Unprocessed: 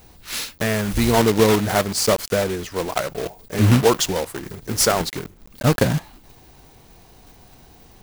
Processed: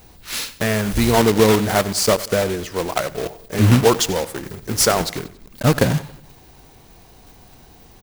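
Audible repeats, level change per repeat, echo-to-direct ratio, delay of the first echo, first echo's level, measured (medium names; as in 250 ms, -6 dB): 3, -7.0 dB, -17.0 dB, 92 ms, -18.0 dB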